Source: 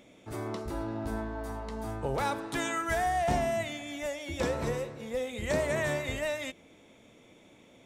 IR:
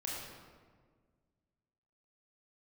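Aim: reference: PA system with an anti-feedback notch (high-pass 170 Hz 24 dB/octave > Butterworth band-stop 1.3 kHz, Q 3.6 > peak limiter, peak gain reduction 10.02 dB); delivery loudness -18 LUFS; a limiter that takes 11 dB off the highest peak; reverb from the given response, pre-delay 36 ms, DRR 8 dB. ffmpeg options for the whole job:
-filter_complex "[0:a]alimiter=level_in=2.11:limit=0.0631:level=0:latency=1,volume=0.473,asplit=2[s0][s1];[1:a]atrim=start_sample=2205,adelay=36[s2];[s1][s2]afir=irnorm=-1:irlink=0,volume=0.335[s3];[s0][s3]amix=inputs=2:normalize=0,highpass=f=170:w=0.5412,highpass=f=170:w=1.3066,asuperstop=centerf=1300:order=8:qfactor=3.6,volume=23.7,alimiter=limit=0.316:level=0:latency=1"

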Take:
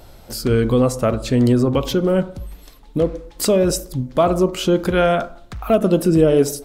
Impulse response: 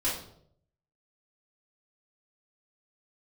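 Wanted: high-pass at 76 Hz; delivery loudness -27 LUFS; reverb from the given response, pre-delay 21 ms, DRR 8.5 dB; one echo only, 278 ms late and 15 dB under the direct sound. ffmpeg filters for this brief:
-filter_complex "[0:a]highpass=76,aecho=1:1:278:0.178,asplit=2[s0][s1];[1:a]atrim=start_sample=2205,adelay=21[s2];[s1][s2]afir=irnorm=-1:irlink=0,volume=0.158[s3];[s0][s3]amix=inputs=2:normalize=0,volume=0.335"

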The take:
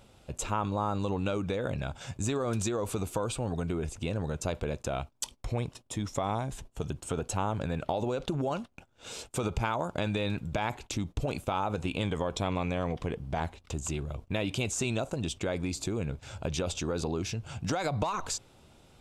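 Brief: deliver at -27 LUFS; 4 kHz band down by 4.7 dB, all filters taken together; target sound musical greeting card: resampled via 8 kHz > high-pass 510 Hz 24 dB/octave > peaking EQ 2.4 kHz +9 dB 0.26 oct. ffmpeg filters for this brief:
-af "equalizer=f=4000:t=o:g=-7,aresample=8000,aresample=44100,highpass=f=510:w=0.5412,highpass=f=510:w=1.3066,equalizer=f=2400:t=o:w=0.26:g=9,volume=3.16"

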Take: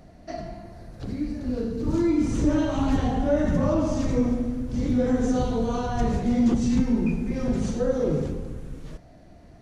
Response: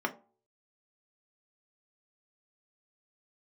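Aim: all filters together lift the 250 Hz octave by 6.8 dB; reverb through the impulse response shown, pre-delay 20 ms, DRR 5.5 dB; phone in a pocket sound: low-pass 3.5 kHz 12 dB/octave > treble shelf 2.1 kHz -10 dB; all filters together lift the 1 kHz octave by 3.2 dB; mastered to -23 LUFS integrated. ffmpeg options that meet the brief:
-filter_complex "[0:a]equalizer=f=250:t=o:g=7.5,equalizer=f=1000:t=o:g=6,asplit=2[s0][s1];[1:a]atrim=start_sample=2205,adelay=20[s2];[s1][s2]afir=irnorm=-1:irlink=0,volume=0.237[s3];[s0][s3]amix=inputs=2:normalize=0,lowpass=3500,highshelf=f=2100:g=-10,volume=0.562"

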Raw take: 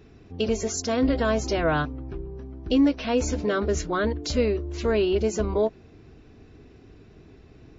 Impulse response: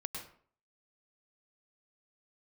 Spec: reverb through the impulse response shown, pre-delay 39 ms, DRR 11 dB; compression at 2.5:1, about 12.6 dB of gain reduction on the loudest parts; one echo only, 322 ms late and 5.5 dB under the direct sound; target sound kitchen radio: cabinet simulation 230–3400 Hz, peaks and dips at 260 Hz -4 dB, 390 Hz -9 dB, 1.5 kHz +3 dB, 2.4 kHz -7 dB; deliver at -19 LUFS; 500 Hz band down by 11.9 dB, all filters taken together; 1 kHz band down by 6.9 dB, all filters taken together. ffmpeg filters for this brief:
-filter_complex "[0:a]equalizer=f=500:t=o:g=-8,equalizer=f=1000:t=o:g=-7,acompressor=threshold=0.0126:ratio=2.5,aecho=1:1:322:0.531,asplit=2[s0][s1];[1:a]atrim=start_sample=2205,adelay=39[s2];[s1][s2]afir=irnorm=-1:irlink=0,volume=0.282[s3];[s0][s3]amix=inputs=2:normalize=0,highpass=230,equalizer=f=260:t=q:w=4:g=-4,equalizer=f=390:t=q:w=4:g=-9,equalizer=f=1500:t=q:w=4:g=3,equalizer=f=2400:t=q:w=4:g=-7,lowpass=f=3400:w=0.5412,lowpass=f=3400:w=1.3066,volume=15"

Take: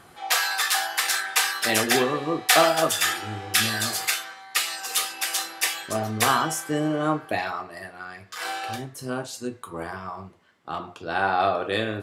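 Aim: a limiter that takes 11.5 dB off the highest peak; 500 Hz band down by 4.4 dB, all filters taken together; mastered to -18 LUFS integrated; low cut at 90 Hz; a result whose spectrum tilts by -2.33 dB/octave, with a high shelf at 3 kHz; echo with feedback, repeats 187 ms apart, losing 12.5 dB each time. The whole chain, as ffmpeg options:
-af "highpass=90,equalizer=f=500:t=o:g=-6.5,highshelf=f=3000:g=3.5,alimiter=limit=0.251:level=0:latency=1,aecho=1:1:187|374|561:0.237|0.0569|0.0137,volume=2.24"

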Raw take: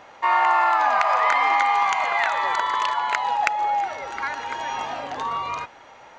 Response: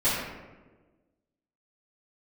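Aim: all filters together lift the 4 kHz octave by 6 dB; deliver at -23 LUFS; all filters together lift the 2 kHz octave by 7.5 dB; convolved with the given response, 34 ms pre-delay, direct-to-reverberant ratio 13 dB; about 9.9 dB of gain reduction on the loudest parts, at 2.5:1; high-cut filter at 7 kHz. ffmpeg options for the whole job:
-filter_complex "[0:a]lowpass=7000,equalizer=f=2000:t=o:g=7.5,equalizer=f=4000:t=o:g=5,acompressor=threshold=0.0501:ratio=2.5,asplit=2[s0][s1];[1:a]atrim=start_sample=2205,adelay=34[s2];[s1][s2]afir=irnorm=-1:irlink=0,volume=0.0473[s3];[s0][s3]amix=inputs=2:normalize=0,volume=1.33"

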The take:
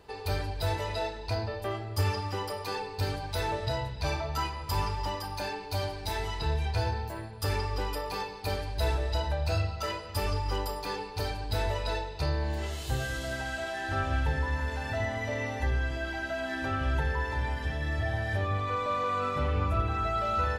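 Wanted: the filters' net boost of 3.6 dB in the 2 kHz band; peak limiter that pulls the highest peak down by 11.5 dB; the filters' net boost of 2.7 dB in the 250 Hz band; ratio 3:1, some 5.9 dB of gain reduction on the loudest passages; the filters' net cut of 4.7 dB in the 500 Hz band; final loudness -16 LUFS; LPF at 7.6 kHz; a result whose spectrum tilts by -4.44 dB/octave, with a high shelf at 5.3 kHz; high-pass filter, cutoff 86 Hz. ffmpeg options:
-af "highpass=86,lowpass=7600,equalizer=f=250:t=o:g=6,equalizer=f=500:t=o:g=-8,equalizer=f=2000:t=o:g=4,highshelf=f=5300:g=7.5,acompressor=threshold=0.0224:ratio=3,volume=15,alimiter=limit=0.398:level=0:latency=1"

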